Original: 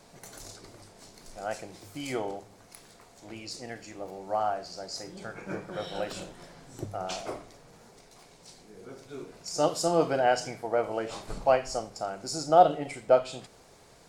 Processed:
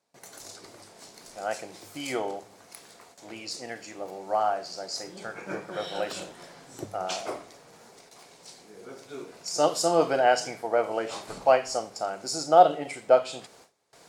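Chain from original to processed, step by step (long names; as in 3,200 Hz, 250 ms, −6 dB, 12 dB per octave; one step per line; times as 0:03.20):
automatic gain control gain up to 4 dB
noise gate with hold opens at −41 dBFS
high-pass filter 330 Hz 6 dB per octave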